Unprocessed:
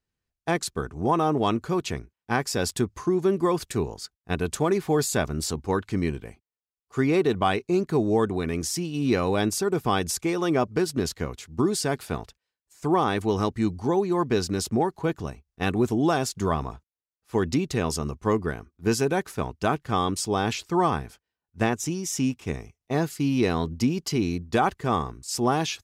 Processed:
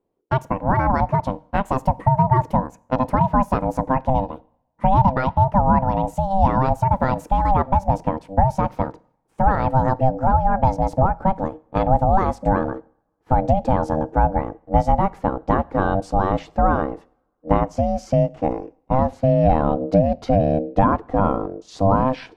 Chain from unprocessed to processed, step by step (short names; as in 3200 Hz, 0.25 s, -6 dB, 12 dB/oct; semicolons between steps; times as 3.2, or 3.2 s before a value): speed glide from 152% -> 79%; bell 510 Hz +14.5 dB 2.4 oct; in parallel at +3 dB: compressor, threshold -17 dBFS, peak gain reduction 12.5 dB; on the sum: RIAA curve playback; on a send at -19 dB: reverb, pre-delay 3 ms; on the sum: ring modulator 390 Hz; gain -10 dB